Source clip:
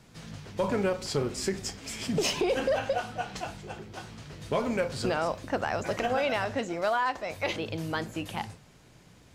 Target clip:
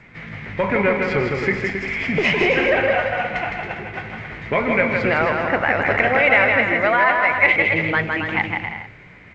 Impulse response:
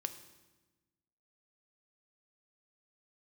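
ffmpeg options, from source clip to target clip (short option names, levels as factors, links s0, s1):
-filter_complex "[0:a]asplit=2[s0][s1];[s1]aecho=0:1:160|272|350.4|405.3|443.7:0.631|0.398|0.251|0.158|0.1[s2];[s0][s2]amix=inputs=2:normalize=0,acontrast=65,lowpass=f=2100:t=q:w=7.3,aeval=exprs='0.841*(cos(1*acos(clip(val(0)/0.841,-1,1)))-cos(1*PI/2))+0.0376*(cos(2*acos(clip(val(0)/0.841,-1,1)))-cos(2*PI/2))+0.0133*(cos(4*acos(clip(val(0)/0.841,-1,1)))-cos(4*PI/2))':c=same" -ar 16000 -c:a g722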